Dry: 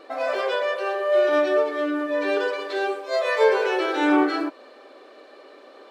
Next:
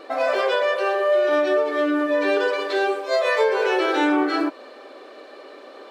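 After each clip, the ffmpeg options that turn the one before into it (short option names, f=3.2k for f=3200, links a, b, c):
-af "acompressor=threshold=-21dB:ratio=6,volume=5dB"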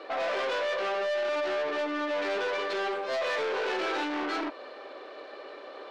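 -filter_complex "[0:a]aeval=exprs='(tanh(28.2*val(0)+0.55)-tanh(0.55))/28.2':c=same,acrossover=split=280 5500:gain=0.0794 1 0.126[a][b][c];[a][b][c]amix=inputs=3:normalize=0,volume=1.5dB"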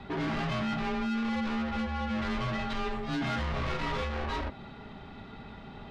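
-af "afreqshift=-370,volume=-1.5dB"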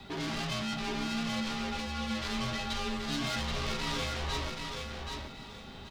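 -filter_complex "[0:a]acrossover=split=380|2300[a][b][c];[c]crystalizer=i=6:c=0[d];[a][b][d]amix=inputs=3:normalize=0,aecho=1:1:779|1558|2337:0.596|0.149|0.0372,volume=-4.5dB"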